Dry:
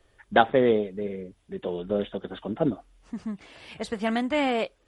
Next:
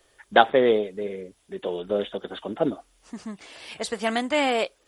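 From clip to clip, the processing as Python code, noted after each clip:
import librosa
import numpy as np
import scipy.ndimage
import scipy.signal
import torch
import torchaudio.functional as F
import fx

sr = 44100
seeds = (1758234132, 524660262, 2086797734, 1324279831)

y = fx.bass_treble(x, sr, bass_db=-10, treble_db=8)
y = y * 10.0 ** (3.0 / 20.0)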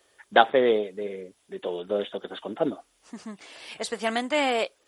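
y = fx.highpass(x, sr, hz=190.0, slope=6)
y = y * 10.0 ** (-1.0 / 20.0)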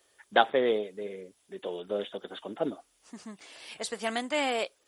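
y = fx.high_shelf(x, sr, hz=5000.0, db=5.5)
y = y * 10.0 ** (-5.0 / 20.0)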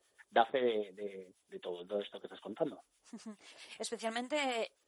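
y = fx.harmonic_tremolo(x, sr, hz=7.6, depth_pct=70, crossover_hz=930.0)
y = y * 10.0 ** (-3.0 / 20.0)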